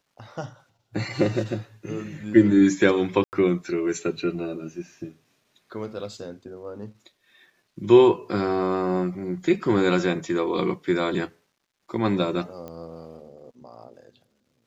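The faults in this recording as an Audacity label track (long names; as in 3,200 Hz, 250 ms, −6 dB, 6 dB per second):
3.240000	3.330000	drop-out 89 ms
12.680000	12.680000	click −24 dBFS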